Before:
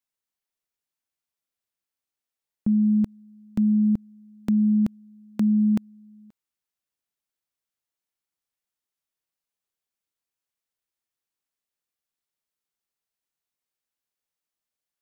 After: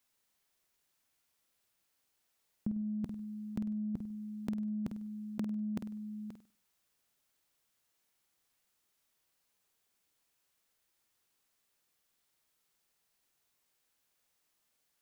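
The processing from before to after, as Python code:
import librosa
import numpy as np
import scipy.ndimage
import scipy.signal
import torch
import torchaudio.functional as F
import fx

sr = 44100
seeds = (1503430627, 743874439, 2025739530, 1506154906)

p1 = fx.over_compress(x, sr, threshold_db=-31.0, ratio=-1.0)
p2 = p1 + fx.room_flutter(p1, sr, wall_m=8.5, rt60_s=0.37, dry=0)
y = p2 * 10.0 ** (-1.5 / 20.0)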